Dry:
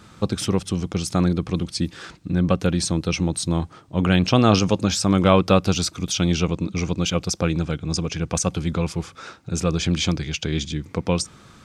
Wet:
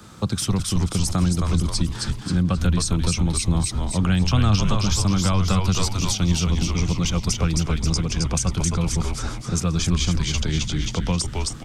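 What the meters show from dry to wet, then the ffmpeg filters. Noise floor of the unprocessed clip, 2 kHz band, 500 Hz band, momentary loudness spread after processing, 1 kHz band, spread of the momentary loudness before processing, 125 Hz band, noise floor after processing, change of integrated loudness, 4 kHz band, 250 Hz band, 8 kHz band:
-49 dBFS, -2.0 dB, -8.0 dB, 5 LU, -3.0 dB, 10 LU, +2.5 dB, -34 dBFS, 0.0 dB, +0.5 dB, -2.0 dB, +3.0 dB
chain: -filter_complex "[0:a]acrossover=split=240|830[a][b][c];[b]acompressor=threshold=-36dB:ratio=6[d];[a][d][c]amix=inputs=3:normalize=0,highshelf=f=8.7k:g=7,asplit=7[e][f][g][h][i][j][k];[f]adelay=266,afreqshift=-100,volume=-4dB[l];[g]adelay=532,afreqshift=-200,volume=-10.7dB[m];[h]adelay=798,afreqshift=-300,volume=-17.5dB[n];[i]adelay=1064,afreqshift=-400,volume=-24.2dB[o];[j]adelay=1330,afreqshift=-500,volume=-31dB[p];[k]adelay=1596,afreqshift=-600,volume=-37.7dB[q];[e][l][m][n][o][p][q]amix=inputs=7:normalize=0,acrossover=split=150[r][s];[s]acompressor=threshold=-25dB:ratio=4[t];[r][t]amix=inputs=2:normalize=0,equalizer=f=2.3k:t=o:w=1.1:g=-4,volume=3dB"

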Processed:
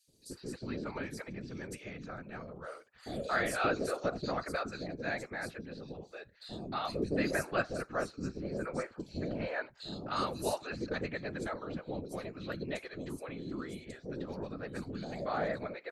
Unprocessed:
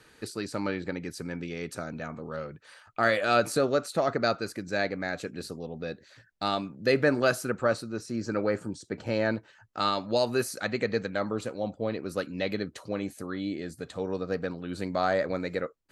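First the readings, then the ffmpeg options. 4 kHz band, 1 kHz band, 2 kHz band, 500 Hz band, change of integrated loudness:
-9.0 dB, -7.0 dB, -6.5 dB, -9.0 dB, -7.5 dB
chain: -filter_complex "[0:a]acrossover=split=500|4100[a][b][c];[a]adelay=80[d];[b]adelay=310[e];[d][e][c]amix=inputs=3:normalize=0,afftfilt=real='hypot(re,im)*cos(2*PI*random(0))':imag='hypot(re,im)*sin(2*PI*random(1))':win_size=512:overlap=0.75"

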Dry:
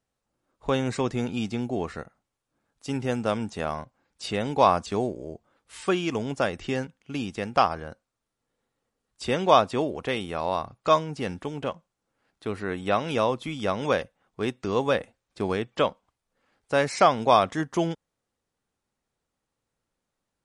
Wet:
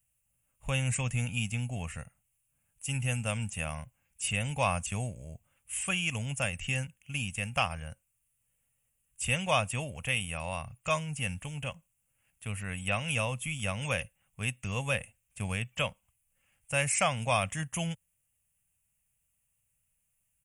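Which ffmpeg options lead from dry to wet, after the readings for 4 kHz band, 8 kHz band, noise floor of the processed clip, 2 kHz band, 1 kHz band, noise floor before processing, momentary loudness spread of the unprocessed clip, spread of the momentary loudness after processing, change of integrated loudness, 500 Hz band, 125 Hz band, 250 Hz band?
-2.0 dB, +8.5 dB, -78 dBFS, +1.0 dB, -11.0 dB, -84 dBFS, 14 LU, 12 LU, -6.0 dB, -12.0 dB, +1.5 dB, -10.0 dB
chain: -af "firequalizer=gain_entry='entry(120,0);entry(360,-30);entry(530,-14);entry(990,-15);entry(1400,-13);entry(2700,4);entry(4000,-21);entry(6900,3);entry(9900,13)':delay=0.05:min_phase=1,volume=3.5dB"

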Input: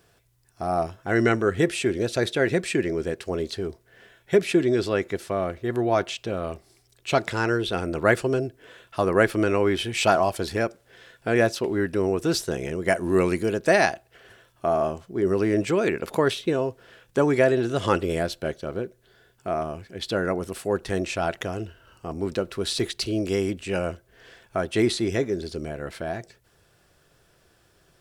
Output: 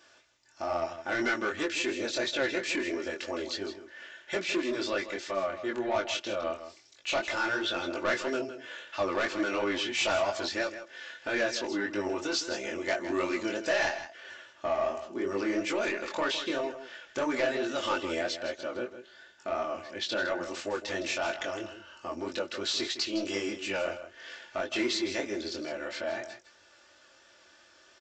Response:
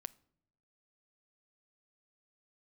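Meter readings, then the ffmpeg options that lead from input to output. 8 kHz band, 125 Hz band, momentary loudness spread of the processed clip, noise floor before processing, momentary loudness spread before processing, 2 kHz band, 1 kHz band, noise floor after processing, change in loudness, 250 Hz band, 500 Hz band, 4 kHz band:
-3.5 dB, -21.0 dB, 10 LU, -63 dBFS, 12 LU, -3.0 dB, -6.5 dB, -60 dBFS, -7.0 dB, -8.5 dB, -8.5 dB, -0.5 dB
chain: -filter_complex "[0:a]highpass=f=900:p=1,aecho=1:1:3.4:0.74,asplit=2[a][b];[b]acompressor=threshold=-39dB:ratio=6,volume=2.5dB[c];[a][c]amix=inputs=2:normalize=0,asoftclip=type=tanh:threshold=-20dB,flanger=delay=19.5:depth=5:speed=3,asplit=2[d][e];[e]aecho=0:1:160:0.266[f];[d][f]amix=inputs=2:normalize=0,aresample=16000,aresample=44100"

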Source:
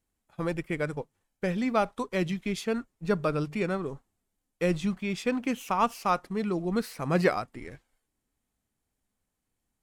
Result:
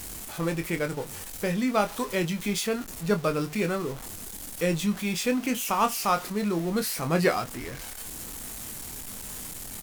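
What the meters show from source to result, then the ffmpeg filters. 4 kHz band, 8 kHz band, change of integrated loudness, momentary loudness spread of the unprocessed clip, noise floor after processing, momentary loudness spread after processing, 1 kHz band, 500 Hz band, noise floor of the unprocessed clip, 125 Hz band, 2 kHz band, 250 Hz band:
+7.5 dB, +14.0 dB, +1.0 dB, 11 LU, -40 dBFS, 11 LU, +1.5 dB, +1.5 dB, -83 dBFS, +1.5 dB, +3.0 dB, +2.0 dB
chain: -filter_complex "[0:a]aeval=exprs='val(0)+0.5*0.015*sgn(val(0))':c=same,aemphasis=mode=production:type=cd,asplit=2[a][b];[b]adelay=24,volume=-7.5dB[c];[a][c]amix=inputs=2:normalize=0"

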